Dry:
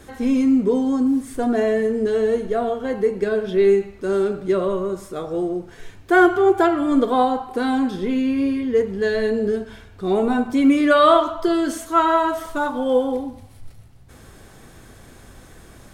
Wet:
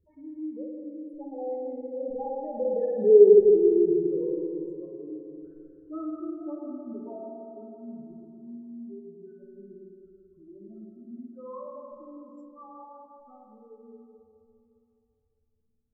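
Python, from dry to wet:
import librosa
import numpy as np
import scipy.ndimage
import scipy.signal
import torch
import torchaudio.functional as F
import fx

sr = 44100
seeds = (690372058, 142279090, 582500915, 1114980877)

y = fx.spec_expand(x, sr, power=3.7)
y = fx.doppler_pass(y, sr, speed_mps=49, closest_m=10.0, pass_at_s=3.26)
y = fx.rev_spring(y, sr, rt60_s=2.8, pass_ms=(51, 55), chirp_ms=70, drr_db=-2.5)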